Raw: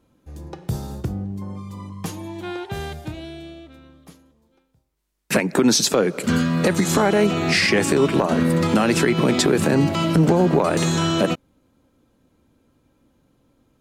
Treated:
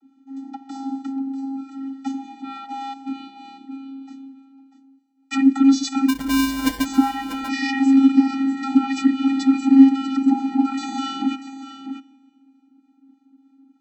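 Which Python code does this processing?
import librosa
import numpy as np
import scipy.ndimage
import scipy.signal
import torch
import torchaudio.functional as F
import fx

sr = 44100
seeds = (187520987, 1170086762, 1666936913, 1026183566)

p1 = fx.harmonic_tremolo(x, sr, hz=3.3, depth_pct=50, crossover_hz=810.0)
p2 = fx.rider(p1, sr, range_db=5, speed_s=2.0)
p3 = p1 + (p2 * 10.0 ** (-1.0 / 20.0))
p4 = fx.rev_schroeder(p3, sr, rt60_s=2.0, comb_ms=30, drr_db=19.0)
p5 = fx.vocoder(p4, sr, bands=32, carrier='square', carrier_hz=270.0)
p6 = fx.sample_hold(p5, sr, seeds[0], rate_hz=1300.0, jitter_pct=0, at=(6.08, 6.84), fade=0.02)
p7 = p6 + fx.echo_single(p6, sr, ms=642, db=-12.5, dry=0)
p8 = fx.dynamic_eq(p7, sr, hz=570.0, q=0.78, threshold_db=-29.0, ratio=4.0, max_db=-6)
y = p8 * 10.0 ** (1.0 / 20.0)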